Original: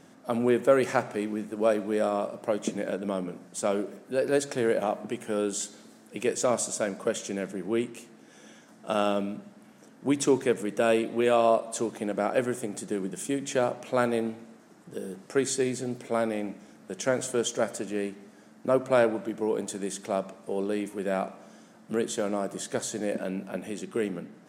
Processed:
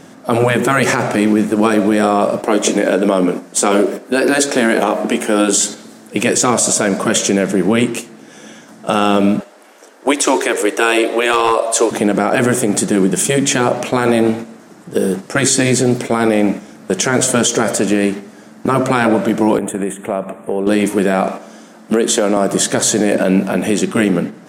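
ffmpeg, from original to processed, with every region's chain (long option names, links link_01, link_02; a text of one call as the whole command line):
ffmpeg -i in.wav -filter_complex "[0:a]asettb=1/sr,asplit=3[link_01][link_02][link_03];[link_01]atrim=end=2.404[link_04];[link_02]atrim=start=2.4:end=5.57,asetpts=PTS-STARTPTS,afade=type=in:duration=0.004:curve=qsin,afade=type=out:start_time=3.166:duration=0.004:curve=qsin,highpass=frequency=210:width=0.5412,highpass=frequency=210:width=1.3066,asplit=2[link_05][link_06];[link_06]adelay=22,volume=-13dB[link_07];[link_05][link_07]amix=inputs=2:normalize=0,atrim=end_sample=139797[link_08];[link_03]atrim=start=5.566[link_09];[link_04][link_08]acrossfade=duration=0.004:curve1=hsin:curve2=qsin[link_10];[link_10][link_09]acrossfade=duration=0.004:curve1=qsin:curve2=hsin,asettb=1/sr,asplit=3[link_11][link_12][link_13];[link_11]atrim=end=9.404[link_14];[link_12]atrim=start=9.4:end=11.91,asetpts=PTS-STARTPTS,afade=type=in:duration=0.004:curve=qsin,afade=type=out:start_time=2.506:duration=0.004:curve=qsin,highpass=frequency=380:width=0.5412,highpass=frequency=380:width=1.3066,asoftclip=type=hard:threshold=-14.5dB[link_15];[link_13]atrim=start=11.906[link_16];[link_14][link_15]acrossfade=duration=0.004:curve1=hsin:curve2=qsin[link_17];[link_17][link_16]acrossfade=duration=0.004:curve1=qsin:curve2=hsin,asettb=1/sr,asplit=3[link_18][link_19][link_20];[link_18]atrim=end=19.584[link_21];[link_19]atrim=start=19.58:end=20.67,asetpts=PTS-STARTPTS,afade=type=in:duration=0.004:curve=qsin,afade=type=out:start_time=1.086:duration=0.004:curve=qsin,acompressor=threshold=-36dB:ratio=5:attack=3.2:release=140:knee=1:detection=peak,asuperstop=centerf=5000:order=4:qfactor=0.83[link_22];[link_20]atrim=start=20.666[link_23];[link_21][link_22]acrossfade=duration=0.004:curve1=hsin:curve2=qsin[link_24];[link_24][link_23]acrossfade=duration=0.004:curve1=qsin:curve2=hsin,asettb=1/sr,asplit=3[link_25][link_26][link_27];[link_25]atrim=end=21.284[link_28];[link_26]atrim=start=21.28:end=22.37,asetpts=PTS-STARTPTS,afade=type=in:duration=0.004:curve=qsin,afade=type=out:start_time=1.086:duration=0.004:curve=qsin,highpass=frequency=190:width=0.5412,highpass=frequency=190:width=1.3066,acompressor=threshold=-31dB:ratio=4:attack=3.2:release=140:knee=1:detection=peak[link_29];[link_27]atrim=start=22.366[link_30];[link_28][link_29]acrossfade=duration=0.004:curve1=hsin:curve2=qsin[link_31];[link_31][link_30]acrossfade=duration=0.004:curve1=qsin:curve2=hsin,agate=range=-7dB:threshold=-42dB:ratio=16:detection=peak,afftfilt=real='re*lt(hypot(re,im),0.316)':imag='im*lt(hypot(re,im),0.316)':win_size=1024:overlap=0.75,alimiter=level_in=24dB:limit=-1dB:release=50:level=0:latency=1,volume=-2.5dB" out.wav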